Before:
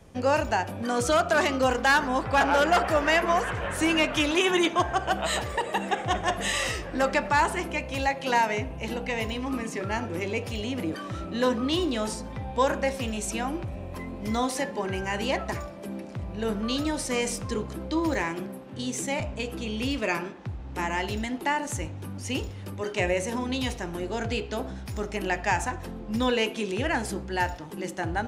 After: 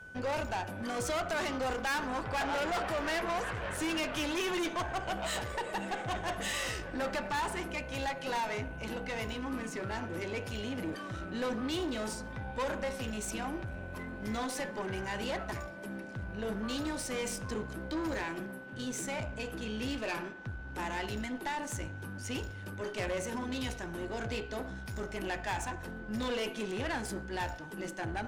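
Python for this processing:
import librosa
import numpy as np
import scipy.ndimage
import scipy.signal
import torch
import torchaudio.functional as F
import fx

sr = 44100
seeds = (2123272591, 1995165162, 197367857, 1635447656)

y = x + 10.0 ** (-42.0 / 20.0) * np.sin(2.0 * np.pi * 1500.0 * np.arange(len(x)) / sr)
y = fx.tube_stage(y, sr, drive_db=26.0, bias=0.5)
y = y * librosa.db_to_amplitude(-3.5)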